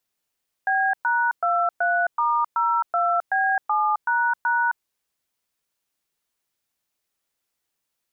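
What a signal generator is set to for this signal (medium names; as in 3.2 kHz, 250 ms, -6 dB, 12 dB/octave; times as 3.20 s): DTMF "B#23*02B7##", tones 264 ms, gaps 114 ms, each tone -21 dBFS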